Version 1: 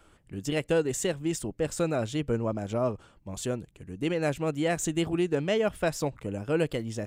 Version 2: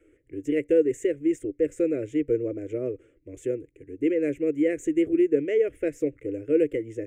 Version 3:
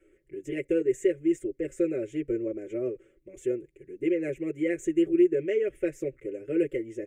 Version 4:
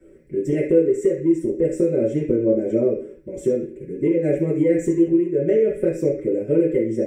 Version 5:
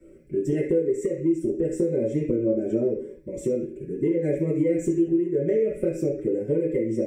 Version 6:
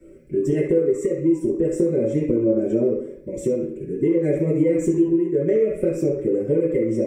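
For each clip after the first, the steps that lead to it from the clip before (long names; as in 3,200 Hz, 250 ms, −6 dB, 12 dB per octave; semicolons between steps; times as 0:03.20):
drawn EQ curve 140 Hz 0 dB, 200 Hz −17 dB, 290 Hz +14 dB, 490 Hz +13 dB, 880 Hz −26 dB, 2,100 Hz +9 dB, 4,400 Hz −23 dB, 6,600 Hz −4 dB, 15,000 Hz −9 dB; level −7 dB
comb filter 5.3 ms, depth 94%; level −4 dB
downward compressor 6 to 1, threshold −30 dBFS, peak gain reduction 13 dB; convolution reverb RT60 0.45 s, pre-delay 3 ms, DRR −6 dB
downward compressor 2 to 1, threshold −21 dBFS, peak gain reduction 6.5 dB; phaser whose notches keep moving one way rising 0.87 Hz
tape delay 65 ms, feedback 55%, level −10.5 dB, low-pass 2,300 Hz; level +3.5 dB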